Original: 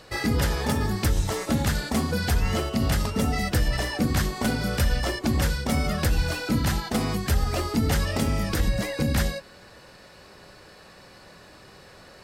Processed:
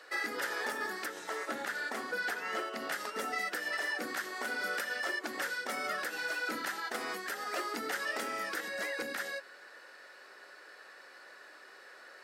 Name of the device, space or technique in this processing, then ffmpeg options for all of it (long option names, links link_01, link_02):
laptop speaker: -filter_complex "[0:a]asettb=1/sr,asplit=3[link_01][link_02][link_03];[link_01]atrim=end=1.064[link_04];[link_02]atrim=start=1.06:end=2.91,asetpts=PTS-STARTPTS,afade=type=in:duration=0.004:curve=qsin,afade=type=out:start_time=1.846:duration=0.004:curve=qsin,highshelf=frequency=3900:gain=-6[link_05];[link_03]atrim=start=2.906[link_06];[link_04][link_05]acrossfade=duration=0.004:curve1=hsin:curve2=qsin[link_07];[link_07][link_06]acrossfade=duration=0.004:curve1=qsin:curve2=hsin,highpass=frequency=340:width=0.5412,highpass=frequency=340:width=1.3066,equalizer=frequency=1400:width_type=o:width=0.35:gain=7.5,equalizer=frequency=1800:width_type=o:width=0.49:gain=8.5,alimiter=limit=-17dB:level=0:latency=1:release=145,volume=-8dB"